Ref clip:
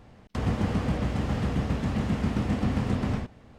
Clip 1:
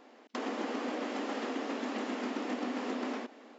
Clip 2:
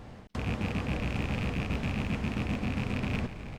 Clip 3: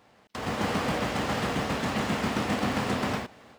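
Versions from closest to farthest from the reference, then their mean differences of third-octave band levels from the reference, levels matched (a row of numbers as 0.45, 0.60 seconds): 2, 3, 1; 3.5, 7.0, 10.5 decibels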